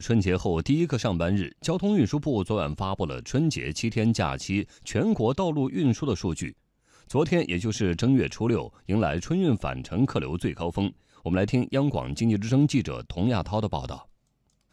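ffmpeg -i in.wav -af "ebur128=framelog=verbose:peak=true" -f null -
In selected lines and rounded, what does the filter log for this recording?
Integrated loudness:
  I:         -26.3 LUFS
  Threshold: -36.5 LUFS
Loudness range:
  LRA:         1.2 LU
  Threshold: -46.5 LUFS
  LRA low:   -27.2 LUFS
  LRA high:  -26.0 LUFS
True peak:
  Peak:      -10.3 dBFS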